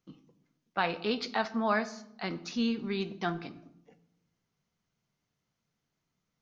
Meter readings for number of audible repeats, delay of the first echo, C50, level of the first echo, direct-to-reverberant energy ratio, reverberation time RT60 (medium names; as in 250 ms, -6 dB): no echo, no echo, 15.5 dB, no echo, 11.5 dB, 0.85 s